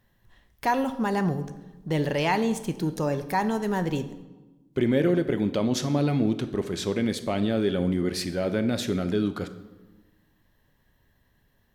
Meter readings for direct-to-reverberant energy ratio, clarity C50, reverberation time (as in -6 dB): 9.0 dB, 12.5 dB, 1.2 s